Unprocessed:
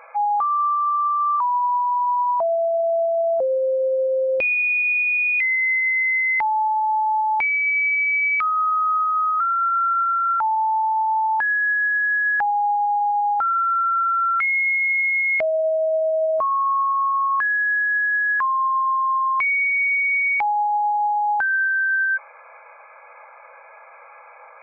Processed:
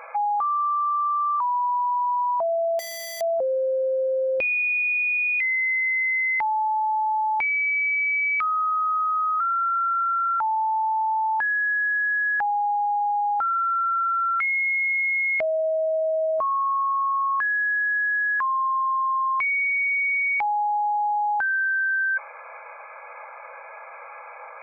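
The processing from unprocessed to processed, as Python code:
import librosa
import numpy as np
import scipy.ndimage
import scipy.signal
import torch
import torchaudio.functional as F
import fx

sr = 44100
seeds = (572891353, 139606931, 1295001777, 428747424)

p1 = fx.over_compress(x, sr, threshold_db=-25.0, ratio=-0.5)
p2 = x + F.gain(torch.from_numpy(p1), -0.5).numpy()
p3 = fx.overflow_wrap(p2, sr, gain_db=23.0, at=(2.79, 3.21))
y = F.gain(torch.from_numpy(p3), -6.0).numpy()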